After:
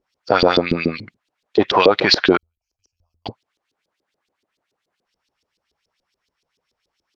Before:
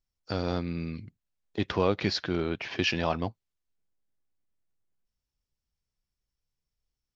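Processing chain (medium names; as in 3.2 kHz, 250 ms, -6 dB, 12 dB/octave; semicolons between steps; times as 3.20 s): 2.37–3.26 s: inverse Chebyshev band-stop 160–3900 Hz, stop band 70 dB; LFO band-pass saw up 7 Hz 340–4800 Hz; loudness maximiser +29 dB; trim -1 dB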